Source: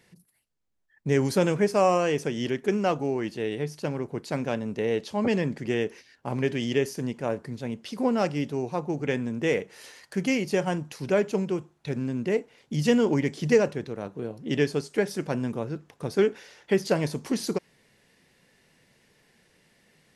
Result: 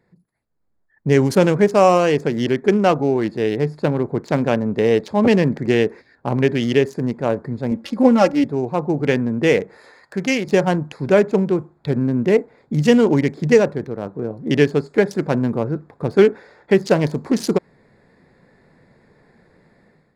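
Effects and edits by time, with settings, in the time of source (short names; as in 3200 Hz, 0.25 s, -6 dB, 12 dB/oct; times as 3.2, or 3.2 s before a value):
7.71–8.44 comb 3.6 ms, depth 90%
9.77–10.48 low shelf 450 Hz -7 dB
whole clip: Wiener smoothing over 15 samples; AGC gain up to 12 dB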